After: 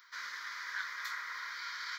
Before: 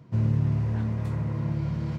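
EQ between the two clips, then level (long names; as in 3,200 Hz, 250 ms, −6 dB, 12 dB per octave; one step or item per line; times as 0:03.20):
high-pass filter 1,400 Hz 24 dB per octave
phaser with its sweep stopped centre 2,700 Hz, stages 6
+14.5 dB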